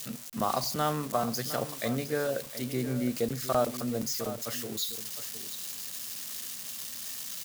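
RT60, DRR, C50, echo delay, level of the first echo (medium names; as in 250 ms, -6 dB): no reverb, no reverb, no reverb, 711 ms, -12.5 dB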